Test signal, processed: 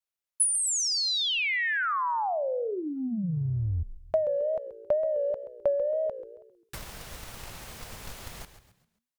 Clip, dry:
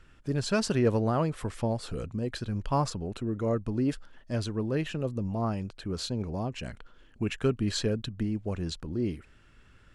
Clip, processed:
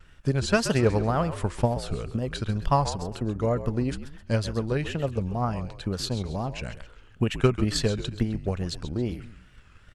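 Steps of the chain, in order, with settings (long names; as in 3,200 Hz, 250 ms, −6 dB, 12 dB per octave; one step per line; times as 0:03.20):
parametric band 300 Hz −6 dB 0.99 octaves
transient designer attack +8 dB, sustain +1 dB
echo with shifted repeats 133 ms, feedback 39%, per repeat −60 Hz, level −12 dB
tape wow and flutter 100 cents
level +2.5 dB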